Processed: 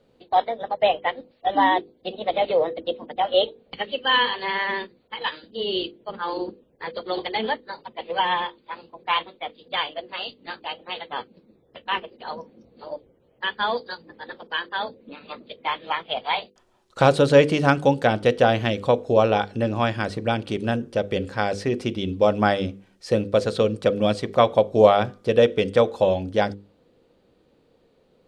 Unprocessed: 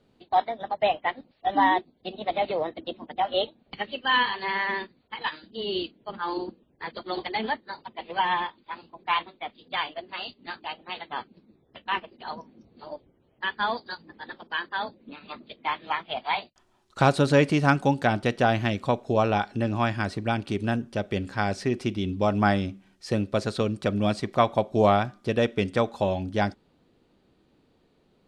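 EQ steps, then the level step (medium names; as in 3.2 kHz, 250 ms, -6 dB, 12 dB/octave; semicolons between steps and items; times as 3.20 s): hum notches 50/100/150/200/250/300/350/400/450/500 Hz; dynamic bell 3.2 kHz, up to +5 dB, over -48 dBFS, Q 4.3; peaking EQ 500 Hz +11 dB 0.36 oct; +1.5 dB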